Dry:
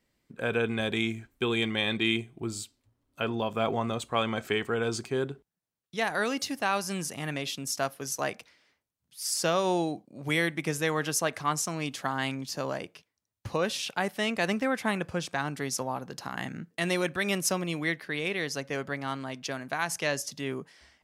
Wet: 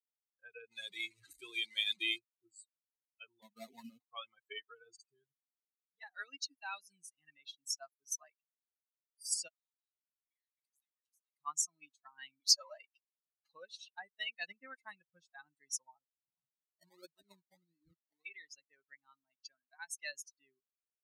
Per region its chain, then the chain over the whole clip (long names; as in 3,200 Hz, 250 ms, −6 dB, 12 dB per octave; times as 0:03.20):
0:00.71–0:02.19: linear delta modulator 64 kbit/s, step −27 dBFS + envelope flattener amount 50%
0:03.42–0:04.04: parametric band 230 Hz +12.5 dB 0.76 octaves + sample-rate reduction 2,800 Hz, jitter 20%
0:04.96–0:06.03: parametric band 690 Hz −8.5 dB 2.5 octaves + all-pass dispersion highs, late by 44 ms, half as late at 2,900 Hz
0:09.48–0:11.41: downward compressor 10 to 1, threshold −33 dBFS + every bin compressed towards the loudest bin 2 to 1
0:12.40–0:13.52: high-pass filter 530 Hz + leveller curve on the samples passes 3
0:16.05–0:18.26: low-pass filter 2,300 Hz 24 dB per octave + sample-and-hold swept by an LFO 27×, swing 60% 1.6 Hz + multiband upward and downward expander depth 70%
whole clip: spectral dynamics exaggerated over time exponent 3; meter weighting curve ITU-R 468; expander for the loud parts 1.5 to 1, over −46 dBFS; level −5 dB